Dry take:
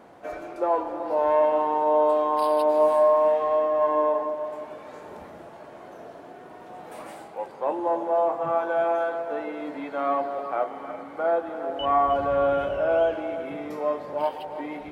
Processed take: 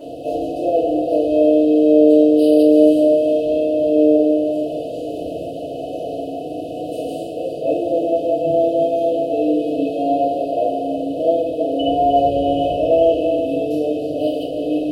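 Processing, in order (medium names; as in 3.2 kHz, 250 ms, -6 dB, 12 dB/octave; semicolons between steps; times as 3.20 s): spectral levelling over time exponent 0.6; brick-wall FIR band-stop 720–2500 Hz; FDN reverb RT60 0.74 s, low-frequency decay 1×, high-frequency decay 0.55×, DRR -8.5 dB; trim -3.5 dB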